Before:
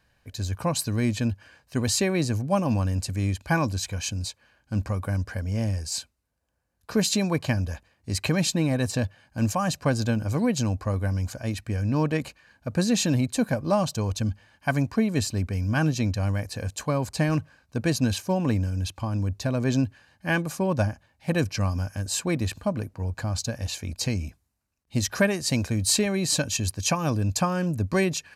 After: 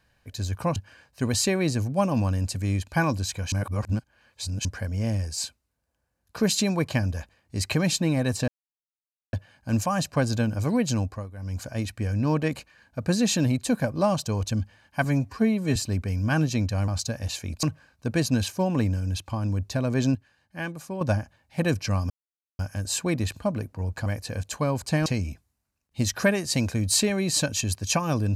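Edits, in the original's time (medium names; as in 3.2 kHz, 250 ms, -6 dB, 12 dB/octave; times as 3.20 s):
0.76–1.30 s: delete
4.06–5.19 s: reverse
9.02 s: insert silence 0.85 s
10.70–11.33 s: dip -14.5 dB, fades 0.27 s
14.73–15.21 s: stretch 1.5×
16.33–17.33 s: swap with 23.27–24.02 s
19.85–20.71 s: gain -8 dB
21.80 s: insert silence 0.49 s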